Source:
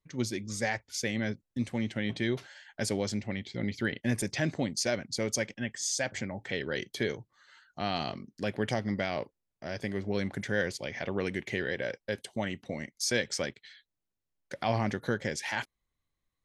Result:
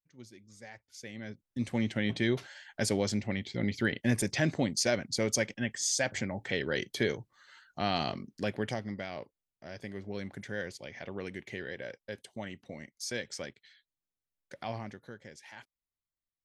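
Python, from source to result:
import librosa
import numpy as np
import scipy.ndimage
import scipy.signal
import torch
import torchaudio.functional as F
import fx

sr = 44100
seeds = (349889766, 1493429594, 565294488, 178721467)

y = fx.gain(x, sr, db=fx.line((0.59, -19.0), (1.28, -10.0), (1.72, 1.5), (8.34, 1.5), (8.96, -7.5), (14.64, -7.5), (15.08, -16.5)))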